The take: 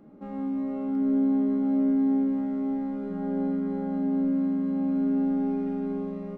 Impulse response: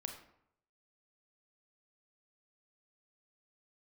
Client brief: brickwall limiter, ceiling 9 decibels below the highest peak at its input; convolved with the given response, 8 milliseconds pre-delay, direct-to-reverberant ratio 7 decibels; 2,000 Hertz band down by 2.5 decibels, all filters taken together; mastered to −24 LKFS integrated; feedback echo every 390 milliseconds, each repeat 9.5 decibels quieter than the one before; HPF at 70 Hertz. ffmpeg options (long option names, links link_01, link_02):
-filter_complex "[0:a]highpass=70,equalizer=frequency=2000:width_type=o:gain=-3.5,alimiter=level_in=2dB:limit=-24dB:level=0:latency=1,volume=-2dB,aecho=1:1:390|780|1170|1560:0.335|0.111|0.0365|0.012,asplit=2[link_01][link_02];[1:a]atrim=start_sample=2205,adelay=8[link_03];[link_02][link_03]afir=irnorm=-1:irlink=0,volume=-5dB[link_04];[link_01][link_04]amix=inputs=2:normalize=0,volume=5.5dB"